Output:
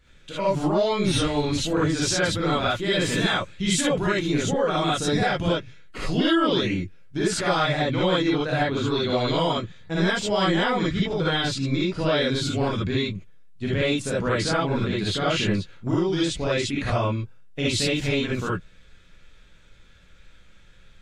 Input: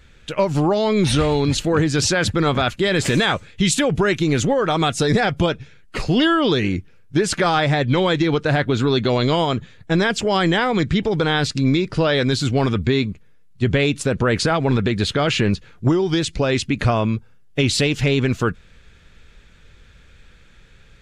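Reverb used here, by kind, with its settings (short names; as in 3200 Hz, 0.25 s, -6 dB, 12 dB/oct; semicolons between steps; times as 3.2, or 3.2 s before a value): non-linear reverb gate 90 ms rising, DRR -6.5 dB; gain -11.5 dB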